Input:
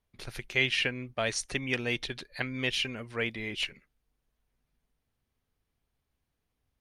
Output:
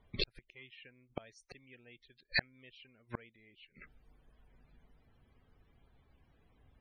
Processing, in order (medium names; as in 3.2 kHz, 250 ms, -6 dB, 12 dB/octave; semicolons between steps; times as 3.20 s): hard clipper -20 dBFS, distortion -18 dB; loudest bins only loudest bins 64; inverted gate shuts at -32 dBFS, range -41 dB; trim +14.5 dB